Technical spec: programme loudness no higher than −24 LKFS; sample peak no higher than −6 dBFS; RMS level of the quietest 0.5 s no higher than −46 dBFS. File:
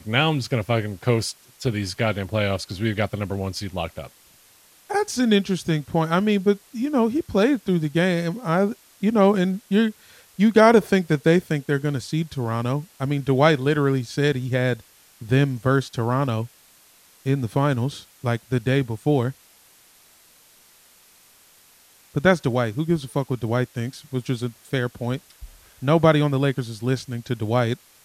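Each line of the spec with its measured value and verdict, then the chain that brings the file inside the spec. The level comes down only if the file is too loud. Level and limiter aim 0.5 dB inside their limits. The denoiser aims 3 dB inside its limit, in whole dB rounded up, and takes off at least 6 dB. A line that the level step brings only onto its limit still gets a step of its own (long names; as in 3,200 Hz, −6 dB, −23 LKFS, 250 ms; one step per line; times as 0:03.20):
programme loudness −22.5 LKFS: out of spec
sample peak −2.0 dBFS: out of spec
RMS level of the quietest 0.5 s −54 dBFS: in spec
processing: level −2 dB
brickwall limiter −6.5 dBFS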